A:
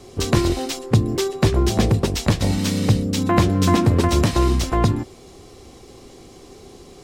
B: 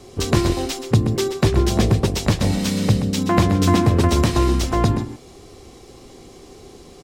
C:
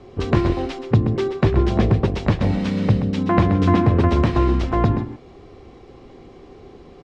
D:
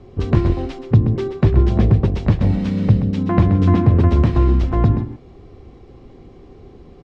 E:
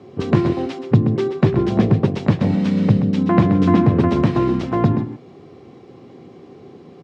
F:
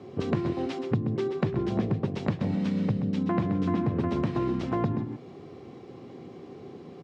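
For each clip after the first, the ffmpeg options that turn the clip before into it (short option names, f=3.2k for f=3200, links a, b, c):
-filter_complex "[0:a]asplit=2[a][b];[b]adelay=128.3,volume=-9dB,highshelf=f=4k:g=-2.89[c];[a][c]amix=inputs=2:normalize=0"
-af "lowpass=2.4k"
-af "lowshelf=f=250:g=10.5,volume=-4.5dB"
-af "highpass=f=130:w=0.5412,highpass=f=130:w=1.3066,volume=3dB"
-af "acompressor=threshold=-24dB:ratio=3,volume=-2.5dB"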